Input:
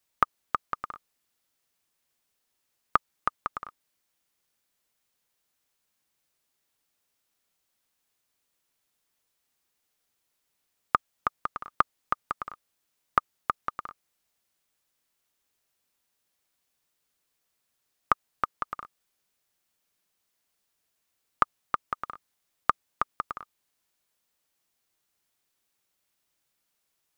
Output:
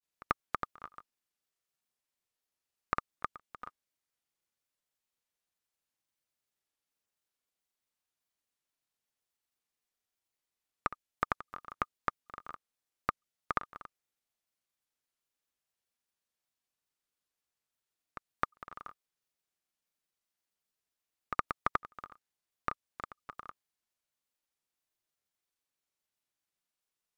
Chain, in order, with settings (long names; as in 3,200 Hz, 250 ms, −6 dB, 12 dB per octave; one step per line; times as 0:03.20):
dynamic equaliser 1,000 Hz, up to −5 dB, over −37 dBFS, Q 0.77
output level in coarse steps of 15 dB
granular cloud 100 ms, grains 23 per second, spray 100 ms, pitch spread up and down by 0 semitones
level +3 dB